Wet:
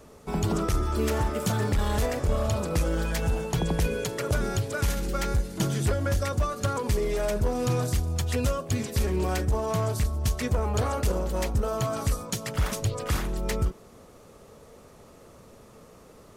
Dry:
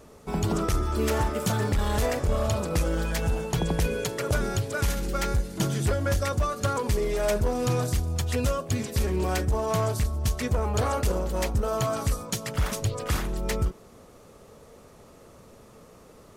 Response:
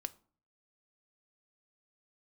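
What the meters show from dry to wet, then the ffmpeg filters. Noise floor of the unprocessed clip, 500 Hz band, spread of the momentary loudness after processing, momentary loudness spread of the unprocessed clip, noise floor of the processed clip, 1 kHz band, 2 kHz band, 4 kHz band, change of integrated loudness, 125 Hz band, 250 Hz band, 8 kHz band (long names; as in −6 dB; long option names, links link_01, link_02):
−51 dBFS, −1.0 dB, 3 LU, 3 LU, −51 dBFS, −1.5 dB, −1.5 dB, −1.0 dB, −0.5 dB, 0.0 dB, 0.0 dB, −1.0 dB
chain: -filter_complex "[0:a]acrossover=split=360[link_01][link_02];[link_02]acompressor=threshold=-27dB:ratio=6[link_03];[link_01][link_03]amix=inputs=2:normalize=0"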